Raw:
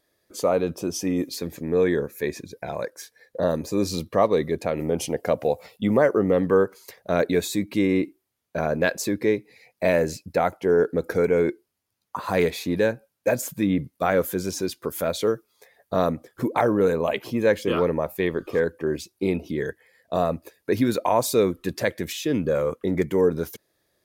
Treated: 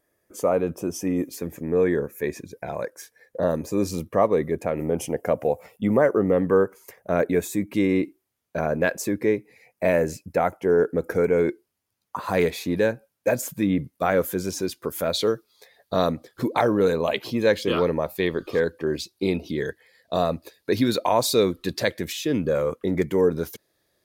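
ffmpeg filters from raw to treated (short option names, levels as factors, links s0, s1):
-af "asetnsamples=n=441:p=0,asendcmd='2.24 equalizer g -7.5;3.91 equalizer g -14;7.74 equalizer g -2;8.6 equalizer g -9;11.39 equalizer g -1.5;15.12 equalizer g 9;21.97 equalizer g 1.5',equalizer=f=4100:t=o:w=0.68:g=-14"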